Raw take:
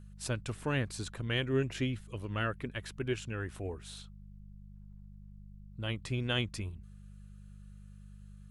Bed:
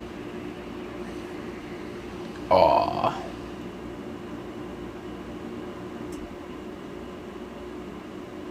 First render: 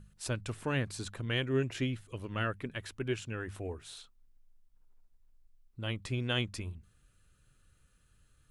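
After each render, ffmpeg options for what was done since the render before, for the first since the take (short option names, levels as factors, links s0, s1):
-af "bandreject=f=50:t=h:w=4,bandreject=f=100:t=h:w=4,bandreject=f=150:t=h:w=4,bandreject=f=200:t=h:w=4"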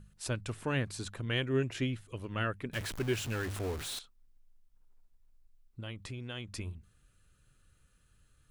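-filter_complex "[0:a]asettb=1/sr,asplit=3[s0][s1][s2];[s0]atrim=end=2.734[s3];[s1]atrim=start=2.73:end=3.99,asetpts=PTS-STARTPTS,afade=t=in:d=0.004:c=qsin,afade=t=out:st=1.256:d=0.004:c=qsin,aeval=exprs='val(0)+0.5*0.015*sgn(val(0))':c=same[s4];[s2]atrim=start=3.986[s5];[s3][s4]acrossfade=d=0.004:c1=hsin:c2=qsin[s6];[s6][s5]acrossfade=d=0.004:c1=qsin:c2=hsin,asettb=1/sr,asplit=3[s7][s8][s9];[s7]atrim=end=5.804[s10];[s8]atrim=start=5.8:end=6.53,asetpts=PTS-STARTPTS,afade=t=in:d=0.004:c=qsin,afade=t=out:st=0.726:d=0.004:c=qsin,acompressor=threshold=0.01:ratio=3:attack=3.2:release=140:knee=1:detection=peak[s11];[s9]atrim=start=6.526[s12];[s10][s11]acrossfade=d=0.004:c1=hsin:c2=qsin[s13];[s13][s12]acrossfade=d=0.004:c1=qsin:c2=hsin"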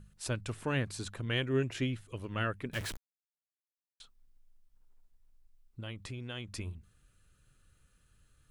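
-filter_complex "[0:a]asplit=3[s0][s1][s2];[s0]atrim=end=2.97,asetpts=PTS-STARTPTS,afade=t=out:st=2.966:d=0.004:c=hsin[s3];[s1]atrim=start=2.97:end=4,asetpts=PTS-STARTPTS,volume=0[s4];[s2]atrim=start=4,asetpts=PTS-STARTPTS,afade=t=in:d=0.004:c=hsin[s5];[s3][s4][s5]concat=n=3:v=0:a=1"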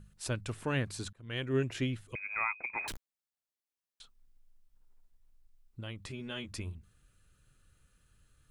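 -filter_complex "[0:a]asettb=1/sr,asplit=3[s0][s1][s2];[s0]atrim=end=2.154[s3];[s1]atrim=start=2.15:end=2.88,asetpts=PTS-STARTPTS,afade=t=in:d=0.004:c=qsin,afade=t=out:st=0.726:d=0.004:c=qsin,lowpass=f=2200:t=q:w=0.5098,lowpass=f=2200:t=q:w=0.6013,lowpass=f=2200:t=q:w=0.9,lowpass=f=2200:t=q:w=2.563,afreqshift=-2600[s4];[s2]atrim=start=2.876[s5];[s3][s4]acrossfade=d=0.004:c1=hsin:c2=qsin[s6];[s6][s5]acrossfade=d=0.004:c1=qsin:c2=hsin,asettb=1/sr,asplit=3[s7][s8][s9];[s7]atrim=end=6.094[s10];[s8]atrim=start=6.09:end=6.52,asetpts=PTS-STARTPTS,afade=t=in:d=0.004:c=qsin,afade=t=out:st=0.426:d=0.004:c=qsin,asplit=2[s11][s12];[s12]adelay=13,volume=0.794[s13];[s11][s13]amix=inputs=2:normalize=0,atrim=end_sample=18963[s14];[s9]atrim=start=6.516[s15];[s10][s14]acrossfade=d=0.004:c1=hsin:c2=qsin[s16];[s16][s15]acrossfade=d=0.004:c1=qsin:c2=hsin,asplit=2[s17][s18];[s17]atrim=end=1.13,asetpts=PTS-STARTPTS,afade=t=out:st=1.126:d=0.004:c=hsin[s19];[s18]atrim=start=1.13,asetpts=PTS-STARTPTS,afade=t=in:d=0.42[s20];[s19][s20]concat=n=2:v=0:a=1"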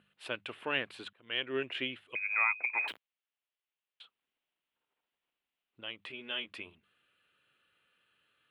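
-af "highpass=400,highshelf=f=4300:t=q:w=3:g=-13"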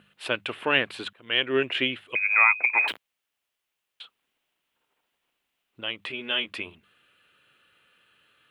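-af "volume=3.35"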